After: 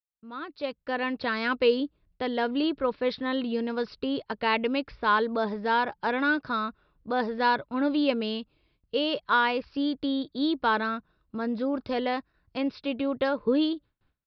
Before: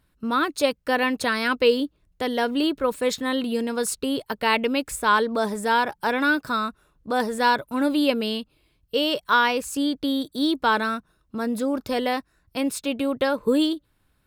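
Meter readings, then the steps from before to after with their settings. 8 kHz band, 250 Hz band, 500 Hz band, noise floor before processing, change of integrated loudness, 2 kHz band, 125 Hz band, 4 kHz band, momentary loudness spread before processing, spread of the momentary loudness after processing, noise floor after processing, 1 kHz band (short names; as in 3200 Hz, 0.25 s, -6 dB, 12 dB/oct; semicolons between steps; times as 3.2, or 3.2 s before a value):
under -30 dB, -3.5 dB, -4.0 dB, -67 dBFS, -4.0 dB, -4.5 dB, n/a, -6.0 dB, 8 LU, 10 LU, -75 dBFS, -4.0 dB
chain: opening faded in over 1.44 s; gate with hold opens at -55 dBFS; high shelf 4200 Hz -6 dB; downsampling 11025 Hz; gain -3.5 dB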